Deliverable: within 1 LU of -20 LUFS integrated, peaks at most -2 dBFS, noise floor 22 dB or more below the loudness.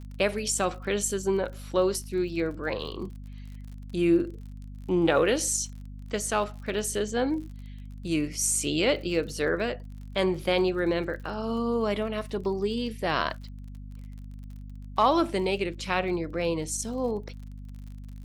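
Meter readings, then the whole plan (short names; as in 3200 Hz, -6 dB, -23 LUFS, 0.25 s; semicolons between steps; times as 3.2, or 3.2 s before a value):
ticks 45/s; hum 50 Hz; harmonics up to 250 Hz; hum level -38 dBFS; loudness -28.0 LUFS; peak -9.0 dBFS; loudness target -20.0 LUFS
-> de-click; de-hum 50 Hz, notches 5; gain +8 dB; limiter -2 dBFS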